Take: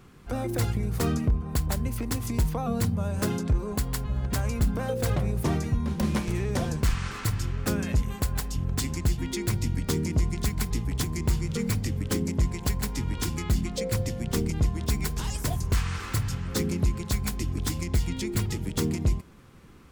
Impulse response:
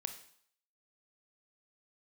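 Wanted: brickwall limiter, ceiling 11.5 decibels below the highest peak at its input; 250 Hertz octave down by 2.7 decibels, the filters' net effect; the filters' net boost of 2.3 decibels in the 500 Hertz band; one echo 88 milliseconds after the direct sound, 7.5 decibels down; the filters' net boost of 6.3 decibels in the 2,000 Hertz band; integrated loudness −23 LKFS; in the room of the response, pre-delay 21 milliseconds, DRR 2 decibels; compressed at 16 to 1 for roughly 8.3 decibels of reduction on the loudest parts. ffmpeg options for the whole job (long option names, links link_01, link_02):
-filter_complex "[0:a]equalizer=frequency=250:width_type=o:gain=-5,equalizer=frequency=500:width_type=o:gain=4,equalizer=frequency=2000:width_type=o:gain=7.5,acompressor=threshold=-27dB:ratio=16,alimiter=level_in=4dB:limit=-24dB:level=0:latency=1,volume=-4dB,aecho=1:1:88:0.422,asplit=2[link_01][link_02];[1:a]atrim=start_sample=2205,adelay=21[link_03];[link_02][link_03]afir=irnorm=-1:irlink=0,volume=-1dB[link_04];[link_01][link_04]amix=inputs=2:normalize=0,volume=11.5dB"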